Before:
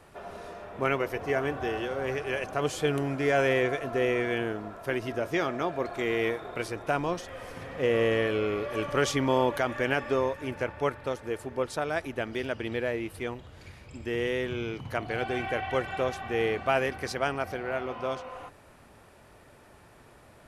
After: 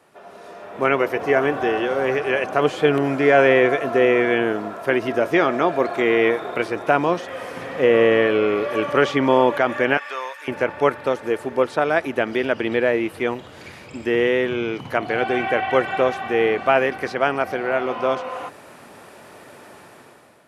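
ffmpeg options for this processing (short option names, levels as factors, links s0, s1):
-filter_complex "[0:a]asettb=1/sr,asplit=3[s0][s1][s2];[s0]atrim=end=9.974[s3];[s1]atrim=start=9.97:end=10.48,asetpts=PTS-STARTPTS,afade=t=in:d=0.004:c=qsin,afade=t=out:st=0.506:d=0.004:c=qsin,highpass=1300[s4];[s2]atrim=start=10.476[s5];[s3][s4]acrossfade=d=0.004:c1=hsin:c2=qsin[s6];[s6][s5]acrossfade=d=0.004:c1=qsin:c2=hsin,dynaudnorm=f=200:g=7:m=4.73,highpass=190,acrossover=split=3300[s7][s8];[s8]acompressor=threshold=0.00562:ratio=4:attack=1:release=60[s9];[s7][s9]amix=inputs=2:normalize=0,volume=0.891"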